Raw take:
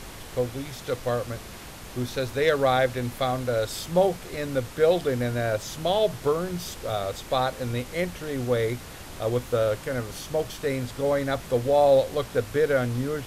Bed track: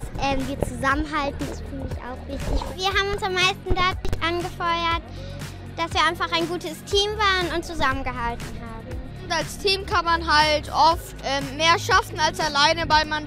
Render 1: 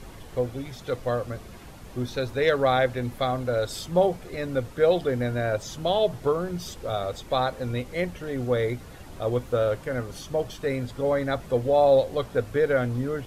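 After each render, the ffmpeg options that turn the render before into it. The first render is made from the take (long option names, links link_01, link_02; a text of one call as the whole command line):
ffmpeg -i in.wav -af "afftdn=noise_reduction=9:noise_floor=-41" out.wav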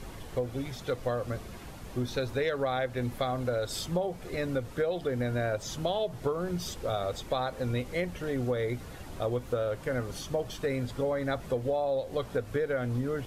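ffmpeg -i in.wav -af "acompressor=threshold=-26dB:ratio=12" out.wav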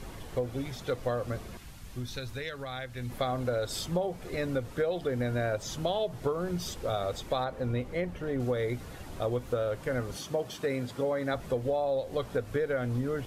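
ffmpeg -i in.wav -filter_complex "[0:a]asettb=1/sr,asplit=3[link_01][link_02][link_03];[link_01]atrim=end=1.574[link_04];[link_02]atrim=start=1.57:end=3.1,asetpts=PTS-STARTPTS,afade=type=in:duration=0.004:curve=qsin,afade=type=out:start_time=1.526:duration=0.004:curve=qsin,equalizer=frequency=510:width_type=o:width=2.8:gain=-11.5[link_05];[link_03]atrim=start=3.096[link_06];[link_04][link_05]acrossfade=duration=0.004:curve1=hsin:curve2=qsin[link_07];[link_07][link_06]acrossfade=duration=0.004:curve1=qsin:curve2=hsin,asettb=1/sr,asplit=3[link_08][link_09][link_10];[link_08]atrim=end=7.444[link_11];[link_09]atrim=start=7.44:end=8.4,asetpts=PTS-STARTPTS,afade=type=in:duration=0.004:curve=qsin,afade=type=out:start_time=0.956:duration=0.004:curve=qsin,highshelf=frequency=2700:gain=-9.5[link_12];[link_10]atrim=start=8.396[link_13];[link_11][link_12]acrossfade=duration=0.004:curve1=hsin:curve2=qsin[link_14];[link_14][link_13]acrossfade=duration=0.004:curve1=qsin:curve2=hsin,asettb=1/sr,asplit=3[link_15][link_16][link_17];[link_15]atrim=end=10.164[link_18];[link_16]atrim=start=10.16:end=11.34,asetpts=PTS-STARTPTS,afade=type=in:duration=0.004:curve=qsin,afade=type=out:start_time=1.176:duration=0.004:curve=qsin,highpass=130[link_19];[link_17]atrim=start=11.336[link_20];[link_18][link_19]acrossfade=duration=0.004:curve1=hsin:curve2=qsin[link_21];[link_21][link_20]acrossfade=duration=0.004:curve1=qsin:curve2=hsin" out.wav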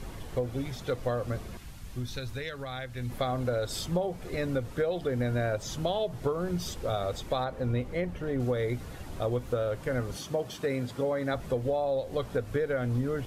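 ffmpeg -i in.wav -af "lowshelf=frequency=190:gain=3.5" out.wav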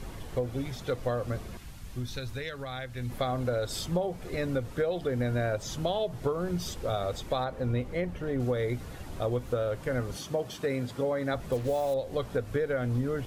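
ffmpeg -i in.wav -filter_complex "[0:a]asettb=1/sr,asplit=3[link_01][link_02][link_03];[link_01]atrim=end=11.524[link_04];[link_02]atrim=start=11.52:end=11.94,asetpts=PTS-STARTPTS,afade=type=in:duration=0.004:curve=qsin,afade=type=out:start_time=0.416:duration=0.004:curve=qsin,acrusher=bits=6:mix=0:aa=0.5[link_05];[link_03]atrim=start=11.936[link_06];[link_04][link_05]acrossfade=duration=0.004:curve1=hsin:curve2=qsin[link_07];[link_07][link_06]acrossfade=duration=0.004:curve1=qsin:curve2=hsin" out.wav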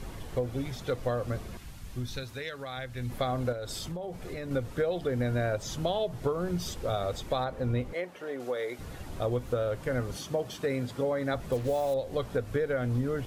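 ffmpeg -i in.wav -filter_complex "[0:a]asettb=1/sr,asplit=3[link_01][link_02][link_03];[link_01]atrim=end=2.234[link_04];[link_02]atrim=start=2.23:end=2.77,asetpts=PTS-STARTPTS,afade=type=in:duration=0.004:curve=qsin,afade=type=out:start_time=0.536:duration=0.004:curve=qsin,highpass=frequency=200:poles=1[link_05];[link_03]atrim=start=2.766[link_06];[link_04][link_05]acrossfade=duration=0.004:curve1=hsin:curve2=qsin[link_07];[link_07][link_06]acrossfade=duration=0.004:curve1=qsin:curve2=hsin,asettb=1/sr,asplit=3[link_08][link_09][link_10];[link_08]atrim=end=3.524[link_11];[link_09]atrim=start=3.52:end=4.51,asetpts=PTS-STARTPTS,afade=type=in:duration=0.004:curve=qsin,afade=type=out:start_time=0.986:duration=0.004:curve=qsin,acompressor=threshold=-33dB:ratio=6:attack=3.2:release=140:knee=1:detection=peak[link_12];[link_10]atrim=start=4.506[link_13];[link_11][link_12]acrossfade=duration=0.004:curve1=hsin:curve2=qsin[link_14];[link_14][link_13]acrossfade=duration=0.004:curve1=qsin:curve2=hsin,asettb=1/sr,asplit=3[link_15][link_16][link_17];[link_15]atrim=end=7.934[link_18];[link_16]atrim=start=7.93:end=8.79,asetpts=PTS-STARTPTS,afade=type=in:duration=0.004:curve=qsin,afade=type=out:start_time=0.856:duration=0.004:curve=qsin,highpass=440[link_19];[link_17]atrim=start=8.786[link_20];[link_18][link_19]acrossfade=duration=0.004:curve1=hsin:curve2=qsin[link_21];[link_21][link_20]acrossfade=duration=0.004:curve1=qsin:curve2=hsin" out.wav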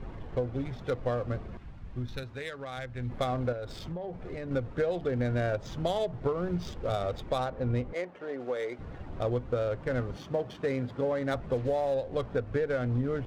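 ffmpeg -i in.wav -af "adynamicsmooth=sensitivity=7.5:basefreq=1600" out.wav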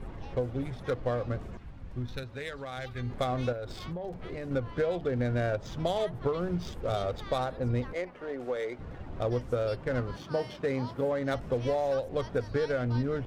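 ffmpeg -i in.wav -i bed.wav -filter_complex "[1:a]volume=-28dB[link_01];[0:a][link_01]amix=inputs=2:normalize=0" out.wav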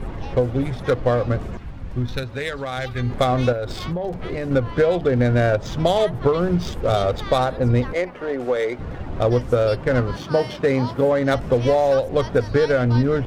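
ffmpeg -i in.wav -af "volume=11.5dB" out.wav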